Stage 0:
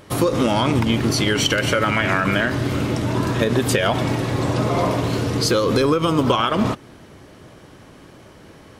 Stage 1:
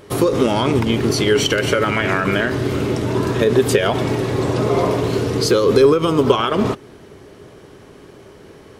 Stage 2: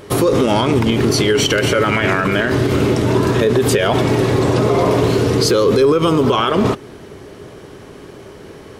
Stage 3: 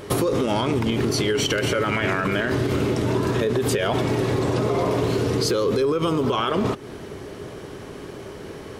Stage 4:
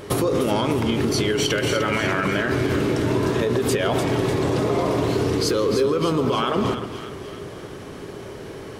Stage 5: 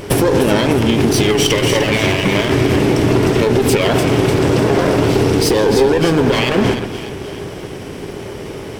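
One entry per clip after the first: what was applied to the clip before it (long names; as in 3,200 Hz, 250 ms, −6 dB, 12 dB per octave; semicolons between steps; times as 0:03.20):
parametric band 410 Hz +10.5 dB 0.32 octaves
brickwall limiter −11 dBFS, peak gain reduction 9.5 dB; level +5.5 dB
downward compressor 3 to 1, threshold −21 dBFS, peak gain reduction 9 dB
echo with a time of its own for lows and highs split 1,200 Hz, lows 127 ms, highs 300 ms, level −8.5 dB
lower of the sound and its delayed copy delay 0.37 ms; level +8.5 dB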